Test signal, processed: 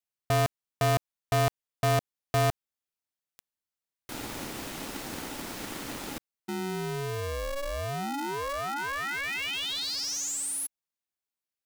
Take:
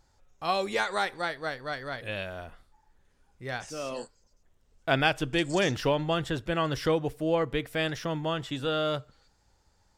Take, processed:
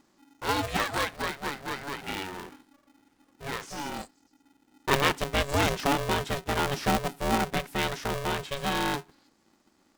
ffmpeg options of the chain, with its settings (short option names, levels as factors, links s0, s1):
-af "aeval=exprs='0.376*(cos(1*acos(clip(val(0)/0.376,-1,1)))-cos(1*PI/2))+0.0473*(cos(4*acos(clip(val(0)/0.376,-1,1)))-cos(4*PI/2))':c=same,aeval=exprs='val(0)*sgn(sin(2*PI*280*n/s))':c=same"